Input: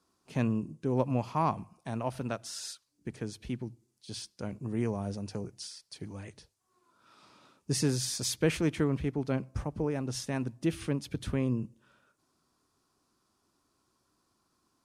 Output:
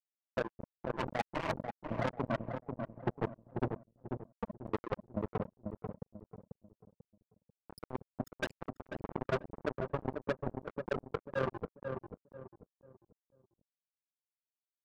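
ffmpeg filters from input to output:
-filter_complex "[0:a]afftfilt=real='re*gte(hypot(re,im),0.112)':imag='im*gte(hypot(re,im),0.112)':win_size=1024:overlap=0.75,crystalizer=i=6:c=0,afftfilt=real='re*lt(hypot(re,im),0.112)':imag='im*lt(hypot(re,im),0.112)':win_size=1024:overlap=0.75,highshelf=f=3300:g=-10.5,bandreject=f=50:t=h:w=6,bandreject=f=100:t=h:w=6,bandreject=f=150:t=h:w=6,bandreject=f=200:t=h:w=6,bandreject=f=250:t=h:w=6,bandreject=f=300:t=h:w=6,asoftclip=type=tanh:threshold=0.01,highpass=f=95:w=0.5412,highpass=f=95:w=1.3066,acrusher=bits=6:mix=0:aa=0.5,asplit=2[s0][s1];[s1]adelay=491,lowpass=f=1000:p=1,volume=0.596,asplit=2[s2][s3];[s3]adelay=491,lowpass=f=1000:p=1,volume=0.35,asplit=2[s4][s5];[s5]adelay=491,lowpass=f=1000:p=1,volume=0.35,asplit=2[s6][s7];[s7]adelay=491,lowpass=f=1000:p=1,volume=0.35[s8];[s2][s4][s6][s8]amix=inputs=4:normalize=0[s9];[s0][s9]amix=inputs=2:normalize=0,volume=5.62"

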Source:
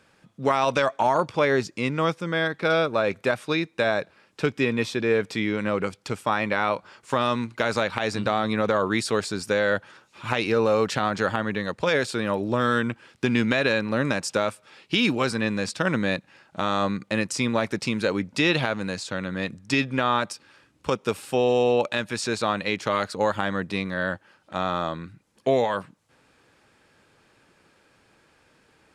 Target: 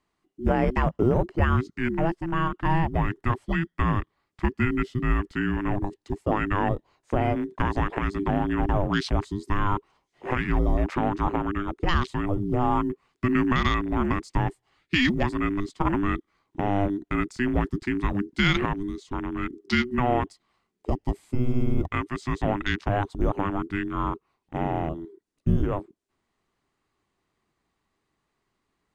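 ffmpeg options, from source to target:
-af "acrusher=bits=8:mode=log:mix=0:aa=0.000001,afwtdn=0.0251,afreqshift=-500"

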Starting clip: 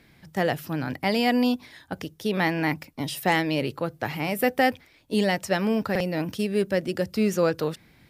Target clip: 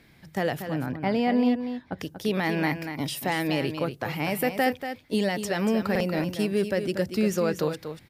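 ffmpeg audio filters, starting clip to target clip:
-filter_complex "[0:a]asettb=1/sr,asplit=3[s0][s1][s2];[s0]atrim=end=0.624[s3];[s1]atrim=start=0.62:end=1.99,asetpts=PTS-STARTPTS,afade=t=in:d=0.004:c=qsin,afade=t=out:st=1.366:d=0.004:c=qsin,lowpass=f=1200:p=1[s4];[s2]atrim=start=1.986[s5];[s3][s4]acrossfade=d=0.004:c1=hsin:c2=qsin[s6];[s6][s5]acrossfade=d=0.004:c1=qsin:c2=hsin,alimiter=limit=0.178:level=0:latency=1:release=69,aecho=1:1:237:0.355"

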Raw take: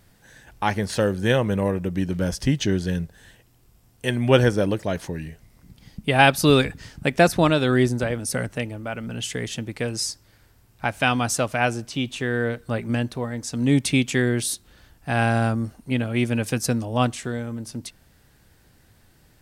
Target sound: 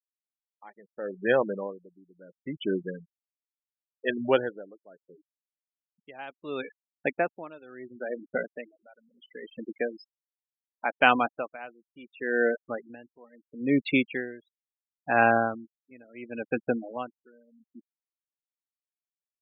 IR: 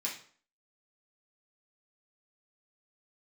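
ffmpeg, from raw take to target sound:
-af "dynaudnorm=f=280:g=21:m=2.24,highpass=340,lowpass=2600,afftfilt=real='re*gte(hypot(re,im),0.0794)':imag='im*gte(hypot(re,im),0.0794)':win_size=1024:overlap=0.75,aeval=exprs='val(0)*pow(10,-25*(0.5-0.5*cos(2*PI*0.72*n/s))/20)':c=same"

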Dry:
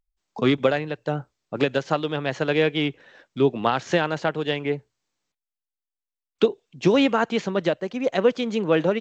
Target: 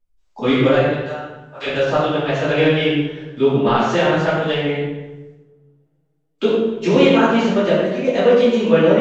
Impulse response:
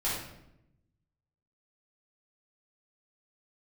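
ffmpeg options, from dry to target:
-filter_complex "[0:a]asettb=1/sr,asplit=3[s0][s1][s2];[s0]atrim=end=0.854[s3];[s1]atrim=start=0.85:end=1.66,asetpts=PTS-STARTPTS,afade=t=in:d=0.004:c=qsin,afade=t=out:st=0.806:d=0.004:c=qsin,highpass=1000[s4];[s2]atrim=start=1.656[s5];[s3][s4]acrossfade=d=0.004:c1=hsin:c2=qsin[s6];[s6][s5]acrossfade=d=0.004:c1=qsin:c2=hsin[s7];[1:a]atrim=start_sample=2205,asetrate=29547,aresample=44100[s8];[s7][s8]afir=irnorm=-1:irlink=0,volume=0.596"

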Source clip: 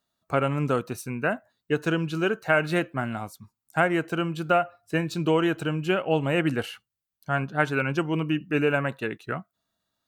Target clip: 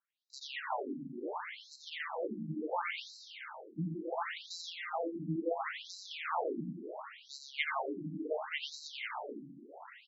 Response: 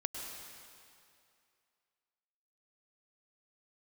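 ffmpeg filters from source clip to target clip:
-filter_complex "[0:a]aemphasis=mode=reproduction:type=50fm,aeval=exprs='abs(val(0))':c=same,aecho=1:1:87:0.596,asplit=2[s0][s1];[1:a]atrim=start_sample=2205,asetrate=33957,aresample=44100,adelay=123[s2];[s1][s2]afir=irnorm=-1:irlink=0,volume=0.501[s3];[s0][s3]amix=inputs=2:normalize=0,afftfilt=real='re*between(b*sr/1024,220*pow(5500/220,0.5+0.5*sin(2*PI*0.71*pts/sr))/1.41,220*pow(5500/220,0.5+0.5*sin(2*PI*0.71*pts/sr))*1.41)':imag='im*between(b*sr/1024,220*pow(5500/220,0.5+0.5*sin(2*PI*0.71*pts/sr))/1.41,220*pow(5500/220,0.5+0.5*sin(2*PI*0.71*pts/sr))*1.41)':win_size=1024:overlap=0.75,volume=0.708"

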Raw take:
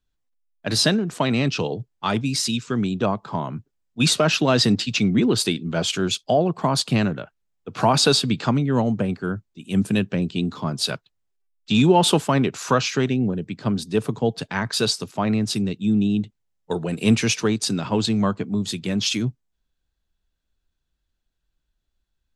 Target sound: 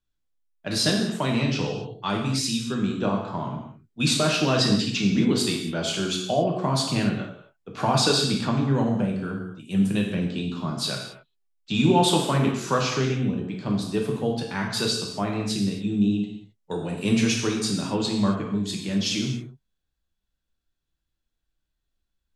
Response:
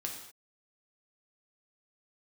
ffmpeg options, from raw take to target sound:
-filter_complex "[1:a]atrim=start_sample=2205,asetrate=40131,aresample=44100[s0];[0:a][s0]afir=irnorm=-1:irlink=0,volume=0.631"

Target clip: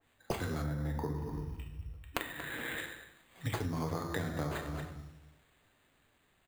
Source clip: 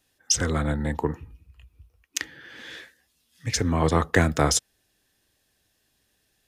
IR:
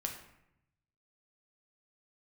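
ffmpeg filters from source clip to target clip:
-filter_complex "[0:a]aecho=1:1:231:0.133[s0];[1:a]atrim=start_sample=2205[s1];[s0][s1]afir=irnorm=-1:irlink=0,acrusher=samples=8:mix=1:aa=0.000001,dynaudnorm=f=240:g=11:m=3.76,asettb=1/sr,asplit=3[s2][s3][s4];[s2]atrim=end=0.644[s5];[s3]atrim=start=0.64:end=2.78,asetpts=PTS-STARTPTS,afade=t=in:d=0.004:c=qsin,afade=t=out:st=2.136:d=0.004:c=qsin,equalizer=f=6000:w=0.8:g=-7.5[s6];[s4]atrim=start=2.776[s7];[s5][s6]acrossfade=d=0.004:c1=hsin:c2=qsin[s8];[s8][s7]acrossfade=d=0.004:c1=qsin:c2=hsin,acompressor=threshold=0.0282:ratio=10,adynamicequalizer=threshold=0.00251:dfrequency=2100:dqfactor=0.7:tfrequency=2100:tqfactor=0.7:attack=5:release=100:ratio=0.375:range=3:mode=cutabove:tftype=highshelf,volume=0.841"

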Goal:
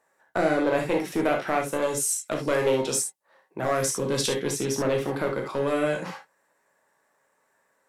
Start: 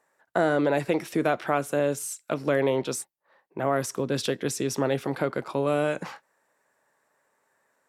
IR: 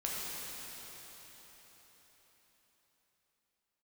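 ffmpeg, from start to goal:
-filter_complex "[0:a]aeval=exprs='clip(val(0),-1,0.1)':c=same,asettb=1/sr,asplit=3[s0][s1][s2];[s0]atrim=end=1.824[s3];[s1]atrim=start=1.82:end=4.33,asetpts=PTS-STARTPTS,afade=t=in:d=0.004:c=qsin,afade=t=out:st=2.506:d=0.004:c=qsin,equalizer=f=8100:t=o:w=1.6:g=7.5[s4];[s2]atrim=start=4.326[s5];[s3][s4]acrossfade=d=0.004:c1=hsin:c2=qsin[s6];[s6][s5]acrossfade=d=0.004:c1=qsin:c2=hsin[s7];[1:a]atrim=start_sample=2205,atrim=end_sample=3528[s8];[s7][s8]afir=irnorm=-1:irlink=0,volume=1.19"

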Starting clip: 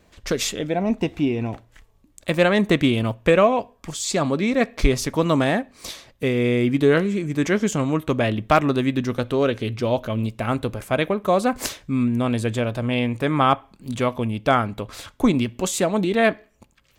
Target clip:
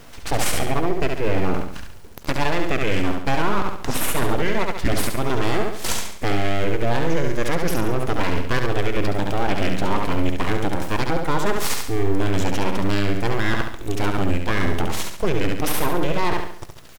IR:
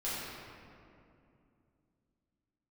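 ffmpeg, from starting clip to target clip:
-filter_complex "[0:a]areverse,acompressor=threshold=0.0355:ratio=10,areverse,aeval=exprs='abs(val(0))':c=same,asetrate=36028,aresample=44100,atempo=1.22405,acrusher=bits=8:dc=4:mix=0:aa=0.000001,asplit=2[s0][s1];[s1]aecho=0:1:69|138|207|276|345:0.531|0.228|0.0982|0.0422|0.0181[s2];[s0][s2]amix=inputs=2:normalize=0,alimiter=level_in=11.9:limit=0.891:release=50:level=0:latency=1,volume=0.447"

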